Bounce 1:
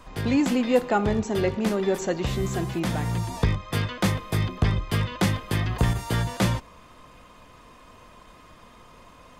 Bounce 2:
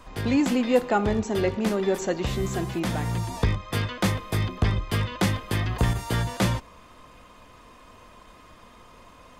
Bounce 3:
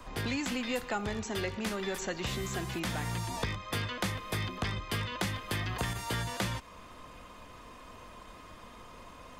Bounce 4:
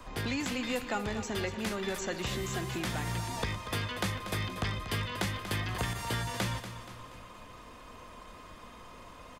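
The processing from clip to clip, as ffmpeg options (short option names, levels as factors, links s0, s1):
-af "equalizer=f=150:t=o:w=0.28:g=-5.5"
-filter_complex "[0:a]acrossover=split=110|1100|4900[s0][s1][s2][s3];[s0]acompressor=threshold=0.00794:ratio=4[s4];[s1]acompressor=threshold=0.0141:ratio=4[s5];[s2]acompressor=threshold=0.0158:ratio=4[s6];[s3]acompressor=threshold=0.00708:ratio=4[s7];[s4][s5][s6][s7]amix=inputs=4:normalize=0"
-af "aecho=1:1:238|476|714|952|1190:0.266|0.128|0.0613|0.0294|0.0141"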